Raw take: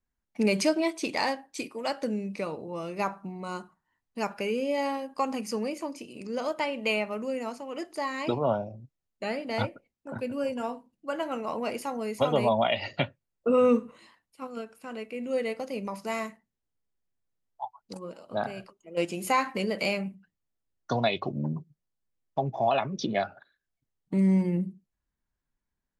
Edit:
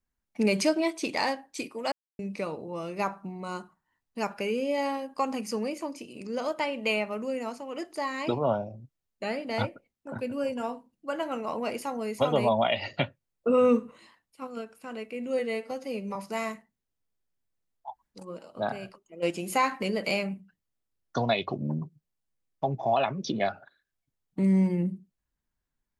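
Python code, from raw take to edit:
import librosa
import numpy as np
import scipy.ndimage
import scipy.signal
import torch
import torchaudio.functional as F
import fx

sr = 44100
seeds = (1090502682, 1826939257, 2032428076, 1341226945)

y = fx.edit(x, sr, fx.silence(start_s=1.92, length_s=0.27),
    fx.stretch_span(start_s=15.39, length_s=0.51, factor=1.5),
    fx.room_tone_fill(start_s=17.66, length_s=0.27, crossfade_s=0.24), tone=tone)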